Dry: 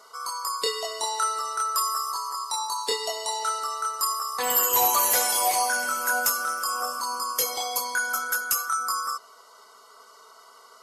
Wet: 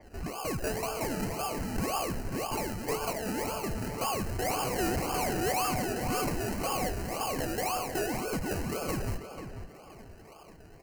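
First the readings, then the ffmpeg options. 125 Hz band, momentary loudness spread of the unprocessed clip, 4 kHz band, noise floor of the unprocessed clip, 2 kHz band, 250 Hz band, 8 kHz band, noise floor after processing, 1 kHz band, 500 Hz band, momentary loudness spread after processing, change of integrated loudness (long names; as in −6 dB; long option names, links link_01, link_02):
can't be measured, 9 LU, −10.0 dB, −52 dBFS, −9.0 dB, +15.0 dB, −12.0 dB, −51 dBFS, −8.0 dB, +1.5 dB, 10 LU, −7.5 dB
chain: -filter_complex "[0:a]equalizer=frequency=710:width=4.4:gain=5.5,aecho=1:1:2.6:0.86,acrossover=split=7100[link_01][link_02];[link_02]acompressor=threshold=-34dB:ratio=6[link_03];[link_01][link_03]amix=inputs=2:normalize=0,acrusher=samples=32:mix=1:aa=0.000001:lfo=1:lforange=19.2:lforate=1.9,flanger=delay=3.4:depth=5.9:regen=-59:speed=0.59:shape=triangular,asoftclip=type=tanh:threshold=-27.5dB,asuperstop=centerf=3500:order=8:qfactor=3.9,asplit=2[link_04][link_05];[link_05]adelay=490,lowpass=frequency=3500:poles=1,volume=-9dB,asplit=2[link_06][link_07];[link_07]adelay=490,lowpass=frequency=3500:poles=1,volume=0.3,asplit=2[link_08][link_09];[link_09]adelay=490,lowpass=frequency=3500:poles=1,volume=0.3[link_10];[link_06][link_08][link_10]amix=inputs=3:normalize=0[link_11];[link_04][link_11]amix=inputs=2:normalize=0,adynamicequalizer=threshold=0.00251:dfrequency=6100:dqfactor=0.7:tfrequency=6100:tqfactor=0.7:attack=5:release=100:ratio=0.375:range=3:mode=boostabove:tftype=highshelf"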